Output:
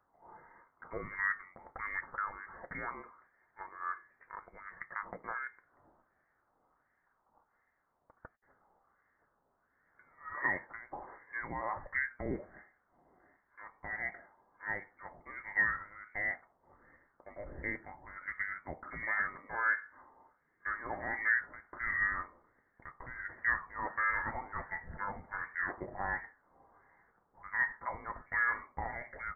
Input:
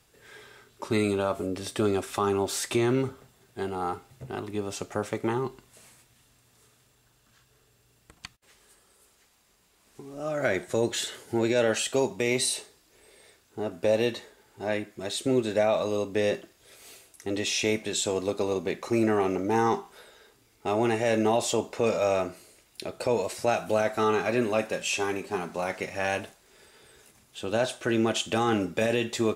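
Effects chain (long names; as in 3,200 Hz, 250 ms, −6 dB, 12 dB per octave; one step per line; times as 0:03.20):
auto-filter high-pass sine 1.4 Hz 690–1,700 Hz
voice inversion scrambler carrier 2,500 Hz
level −8.5 dB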